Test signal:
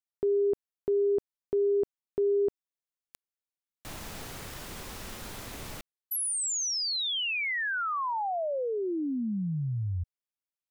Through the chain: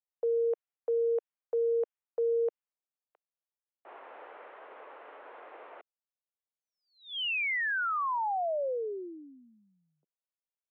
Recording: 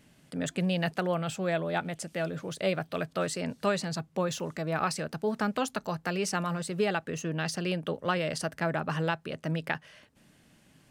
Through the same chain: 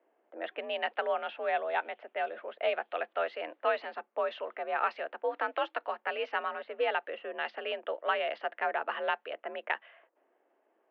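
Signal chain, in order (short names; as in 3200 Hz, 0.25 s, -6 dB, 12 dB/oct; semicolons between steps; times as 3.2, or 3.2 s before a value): mistuned SSB +61 Hz 390–3100 Hz; low-pass opened by the level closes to 790 Hz, open at -27.5 dBFS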